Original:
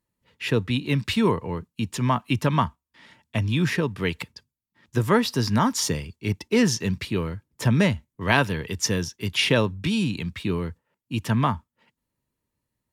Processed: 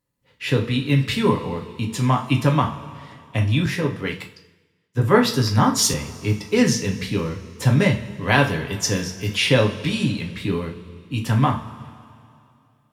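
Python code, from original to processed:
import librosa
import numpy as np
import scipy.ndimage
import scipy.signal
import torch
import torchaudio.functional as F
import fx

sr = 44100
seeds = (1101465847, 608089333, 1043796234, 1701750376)

y = fx.rev_double_slope(x, sr, seeds[0], early_s=0.35, late_s=2.6, knee_db=-18, drr_db=0.5)
y = fx.band_widen(y, sr, depth_pct=70, at=(3.66, 5.94))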